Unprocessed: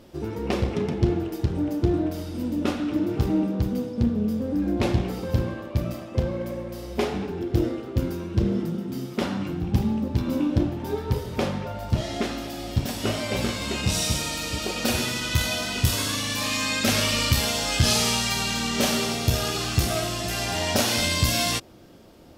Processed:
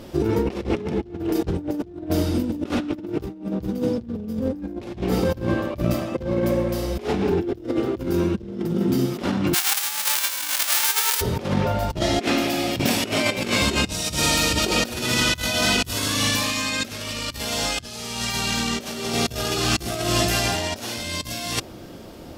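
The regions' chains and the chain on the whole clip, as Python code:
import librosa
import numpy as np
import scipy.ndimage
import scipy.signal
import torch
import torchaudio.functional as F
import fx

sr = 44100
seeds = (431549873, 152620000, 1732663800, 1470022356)

y = fx.envelope_flatten(x, sr, power=0.1, at=(9.53, 11.2), fade=0.02)
y = fx.highpass(y, sr, hz=990.0, slope=12, at=(9.53, 11.2), fade=0.02)
y = fx.over_compress(y, sr, threshold_db=-25.0, ratio=-0.5, at=(9.53, 11.2), fade=0.02)
y = fx.chain(y, sr, fx.highpass(hz=130.0, slope=12),
    fx.peak_eq(hz=2400.0, db=6.5, octaves=0.46), at=(12.19, 13.62))
y = fx.dynamic_eq(y, sr, hz=360.0, q=2.3, threshold_db=-36.0, ratio=4.0, max_db=4)
y = fx.over_compress(y, sr, threshold_db=-29.0, ratio=-0.5)
y = y * librosa.db_to_amplitude(5.5)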